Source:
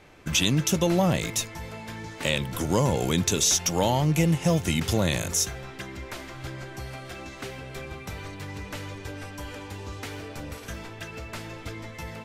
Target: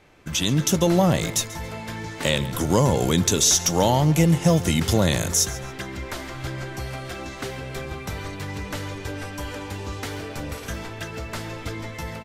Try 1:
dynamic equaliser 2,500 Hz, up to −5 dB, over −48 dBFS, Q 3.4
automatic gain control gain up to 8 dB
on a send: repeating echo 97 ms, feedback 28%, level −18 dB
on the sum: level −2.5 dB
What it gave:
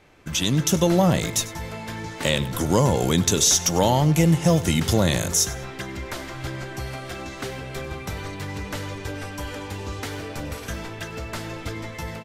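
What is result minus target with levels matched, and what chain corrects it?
echo 41 ms early
dynamic equaliser 2,500 Hz, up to −5 dB, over −48 dBFS, Q 3.4
automatic gain control gain up to 8 dB
on a send: repeating echo 138 ms, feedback 28%, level −18 dB
on the sum: level −2.5 dB

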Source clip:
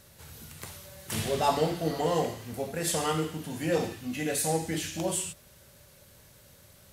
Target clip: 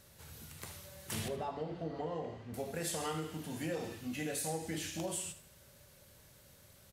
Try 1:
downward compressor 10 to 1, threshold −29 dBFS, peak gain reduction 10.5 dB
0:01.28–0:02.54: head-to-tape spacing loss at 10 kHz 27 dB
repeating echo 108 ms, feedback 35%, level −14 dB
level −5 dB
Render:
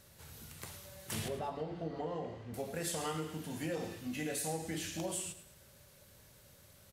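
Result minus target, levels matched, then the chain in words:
echo 31 ms late
downward compressor 10 to 1, threshold −29 dBFS, peak gain reduction 10.5 dB
0:01.28–0:02.54: head-to-tape spacing loss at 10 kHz 27 dB
repeating echo 77 ms, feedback 35%, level −14 dB
level −5 dB

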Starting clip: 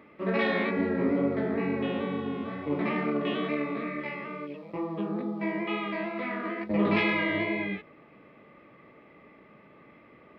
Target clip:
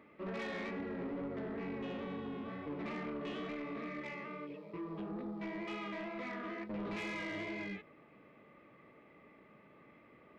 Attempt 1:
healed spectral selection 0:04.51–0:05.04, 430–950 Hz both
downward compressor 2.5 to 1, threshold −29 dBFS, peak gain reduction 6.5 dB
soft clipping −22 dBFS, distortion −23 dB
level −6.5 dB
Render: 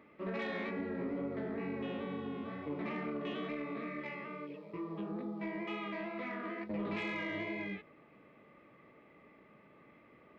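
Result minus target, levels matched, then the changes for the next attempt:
soft clipping: distortion −10 dB
change: soft clipping −29.5 dBFS, distortion −13 dB

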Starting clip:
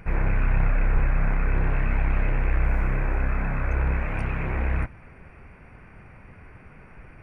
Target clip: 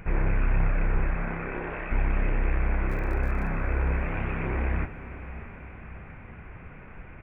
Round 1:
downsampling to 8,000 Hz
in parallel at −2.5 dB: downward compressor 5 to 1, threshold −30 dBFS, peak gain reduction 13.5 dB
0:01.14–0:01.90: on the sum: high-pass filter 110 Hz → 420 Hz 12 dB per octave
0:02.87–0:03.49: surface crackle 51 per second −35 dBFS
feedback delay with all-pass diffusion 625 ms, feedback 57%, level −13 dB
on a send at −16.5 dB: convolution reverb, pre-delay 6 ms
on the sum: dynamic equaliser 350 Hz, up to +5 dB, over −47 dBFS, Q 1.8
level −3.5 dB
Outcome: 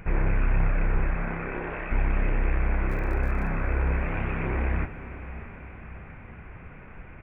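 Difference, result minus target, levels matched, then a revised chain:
downward compressor: peak gain reduction −5 dB
downsampling to 8,000 Hz
in parallel at −2.5 dB: downward compressor 5 to 1, threshold −36 dBFS, peak gain reduction 18.5 dB
0:01.14–0:01.90: on the sum: high-pass filter 110 Hz → 420 Hz 12 dB per octave
0:02.87–0:03.49: surface crackle 51 per second −35 dBFS
feedback delay with all-pass diffusion 625 ms, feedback 57%, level −13 dB
on a send at −16.5 dB: convolution reverb, pre-delay 6 ms
on the sum: dynamic equaliser 350 Hz, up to +5 dB, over −47 dBFS, Q 1.8
level −3.5 dB

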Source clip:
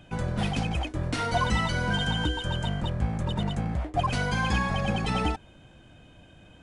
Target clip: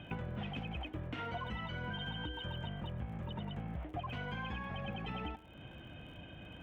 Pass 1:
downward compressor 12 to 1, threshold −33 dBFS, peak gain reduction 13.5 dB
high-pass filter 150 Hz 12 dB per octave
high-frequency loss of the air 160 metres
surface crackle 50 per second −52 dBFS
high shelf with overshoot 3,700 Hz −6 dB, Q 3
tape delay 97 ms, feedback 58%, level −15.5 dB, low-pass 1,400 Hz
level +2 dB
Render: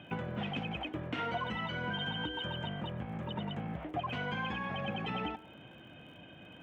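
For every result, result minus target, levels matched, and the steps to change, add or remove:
downward compressor: peak gain reduction −6 dB; 125 Hz band −4.0 dB
change: downward compressor 12 to 1, threshold −39.5 dBFS, peak gain reduction 19.5 dB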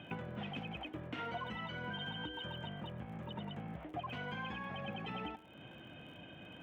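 125 Hz band −3.5 dB
change: high-pass filter 44 Hz 12 dB per octave

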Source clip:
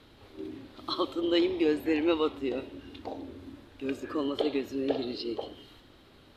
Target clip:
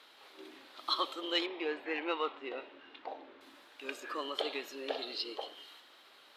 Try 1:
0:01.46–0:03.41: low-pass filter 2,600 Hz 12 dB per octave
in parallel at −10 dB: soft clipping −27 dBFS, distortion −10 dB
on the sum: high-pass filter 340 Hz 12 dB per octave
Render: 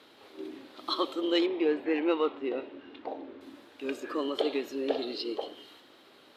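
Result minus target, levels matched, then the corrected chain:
250 Hz band +6.5 dB
0:01.46–0:03.41: low-pass filter 2,600 Hz 12 dB per octave
in parallel at −10 dB: soft clipping −27 dBFS, distortion −10 dB
on the sum: high-pass filter 810 Hz 12 dB per octave

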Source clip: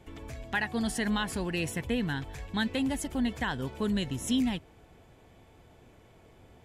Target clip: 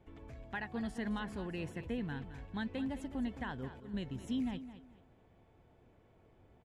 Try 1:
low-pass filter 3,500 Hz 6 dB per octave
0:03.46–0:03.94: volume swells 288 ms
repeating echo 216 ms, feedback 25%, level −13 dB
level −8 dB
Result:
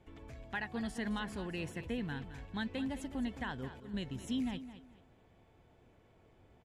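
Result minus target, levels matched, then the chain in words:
4,000 Hz band +4.0 dB
low-pass filter 1,600 Hz 6 dB per octave
0:03.46–0:03.94: volume swells 288 ms
repeating echo 216 ms, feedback 25%, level −13 dB
level −8 dB

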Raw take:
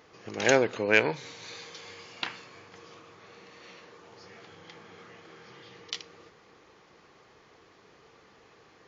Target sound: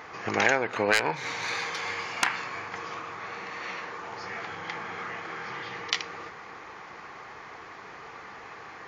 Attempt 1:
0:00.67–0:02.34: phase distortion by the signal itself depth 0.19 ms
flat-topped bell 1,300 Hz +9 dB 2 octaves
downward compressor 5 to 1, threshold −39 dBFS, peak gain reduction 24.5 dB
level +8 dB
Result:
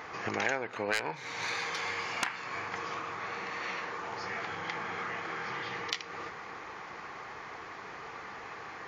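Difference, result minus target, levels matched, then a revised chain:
downward compressor: peak gain reduction +8 dB
0:00.67–0:02.34: phase distortion by the signal itself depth 0.19 ms
flat-topped bell 1,300 Hz +9 dB 2 octaves
downward compressor 5 to 1, threshold −29 dBFS, peak gain reduction 16.5 dB
level +8 dB

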